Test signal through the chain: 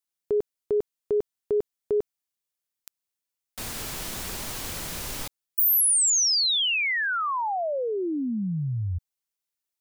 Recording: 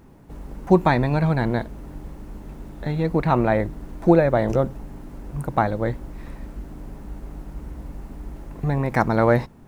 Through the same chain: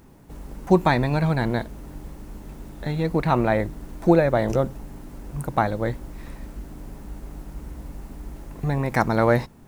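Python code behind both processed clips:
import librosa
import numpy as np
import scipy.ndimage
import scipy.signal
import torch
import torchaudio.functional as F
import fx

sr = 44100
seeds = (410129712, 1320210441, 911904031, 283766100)

y = fx.high_shelf(x, sr, hz=3300.0, db=7.5)
y = F.gain(torch.from_numpy(y), -1.5).numpy()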